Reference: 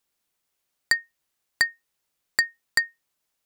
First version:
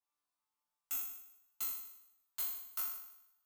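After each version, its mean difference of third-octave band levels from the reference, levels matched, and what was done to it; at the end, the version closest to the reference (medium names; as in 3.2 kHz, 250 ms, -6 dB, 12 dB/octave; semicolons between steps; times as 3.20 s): 15.0 dB: bit-reversed sample order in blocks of 256 samples; high-order bell 1 kHz +11.5 dB 1 oct; chord resonator G2 fifth, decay 0.8 s; trim +1 dB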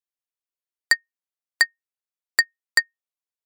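1.5 dB: high-pass 310 Hz 24 dB/octave; band-stop 850 Hz, Q 26; upward expansion 2.5:1, over -33 dBFS; trim +4.5 dB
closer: second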